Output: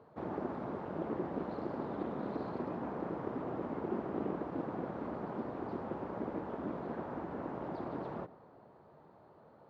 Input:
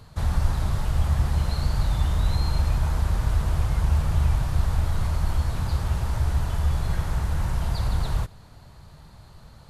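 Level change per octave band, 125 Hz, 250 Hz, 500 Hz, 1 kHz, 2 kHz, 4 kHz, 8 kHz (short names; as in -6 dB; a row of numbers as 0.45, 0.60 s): -24.5 dB, -2.0 dB, +1.5 dB, -6.0 dB, -13.0 dB, under -25 dB, under -35 dB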